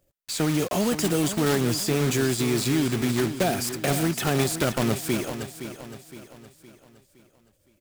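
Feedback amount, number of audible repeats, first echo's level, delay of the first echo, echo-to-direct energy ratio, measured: 45%, 4, −11.0 dB, 515 ms, −10.0 dB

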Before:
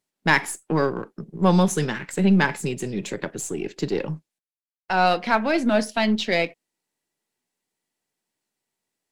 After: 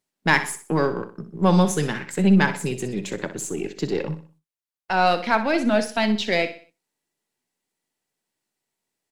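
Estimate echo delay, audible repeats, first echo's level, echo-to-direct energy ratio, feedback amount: 62 ms, 3, −12.0 dB, −11.5 dB, 38%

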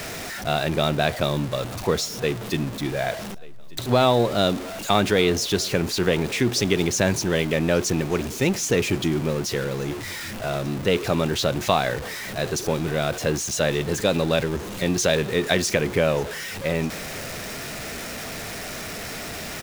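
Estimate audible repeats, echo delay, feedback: 2, 1,186 ms, 34%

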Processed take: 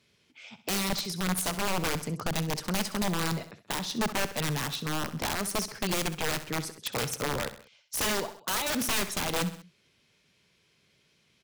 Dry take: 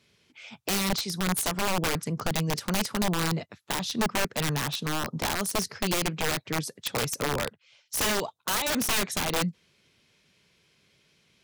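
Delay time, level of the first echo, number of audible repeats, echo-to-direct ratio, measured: 65 ms, −13.5 dB, 3, −12.0 dB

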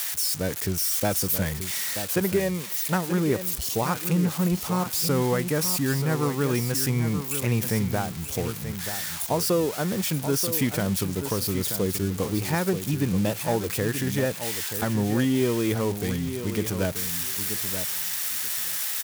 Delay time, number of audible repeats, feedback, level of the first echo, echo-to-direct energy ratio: 932 ms, 2, 15%, −9.5 dB, −9.5 dB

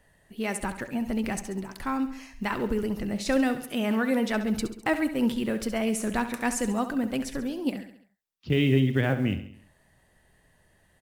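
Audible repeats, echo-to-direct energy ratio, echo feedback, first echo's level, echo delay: 5, −10.0 dB, 51%, −11.5 dB, 68 ms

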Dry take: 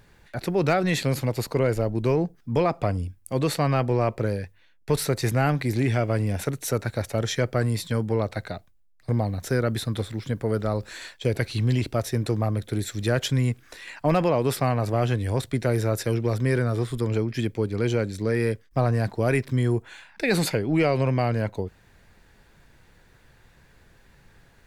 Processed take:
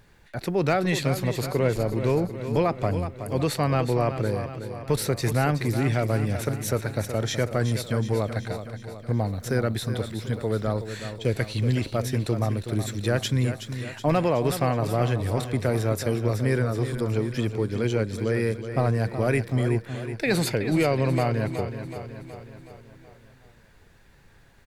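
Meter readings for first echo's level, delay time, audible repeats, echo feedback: −10.0 dB, 372 ms, 5, 56%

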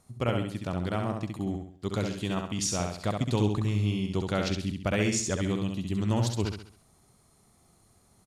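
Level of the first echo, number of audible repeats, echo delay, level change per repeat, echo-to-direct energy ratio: −4.5 dB, 4, 67 ms, −7.5 dB, −3.5 dB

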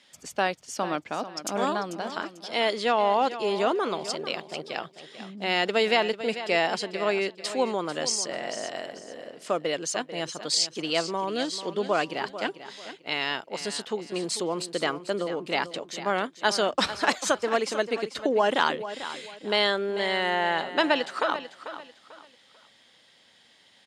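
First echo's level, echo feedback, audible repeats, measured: −12.5 dB, 30%, 3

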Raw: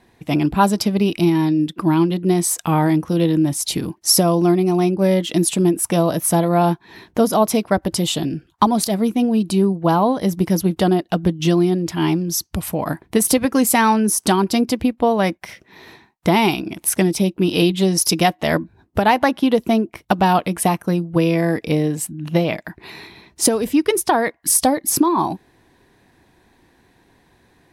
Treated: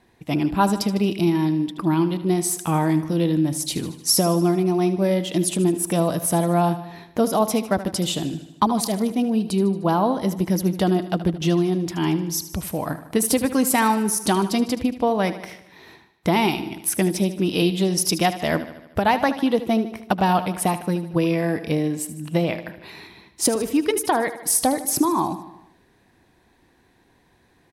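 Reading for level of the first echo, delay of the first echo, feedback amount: −13.5 dB, 76 ms, 59%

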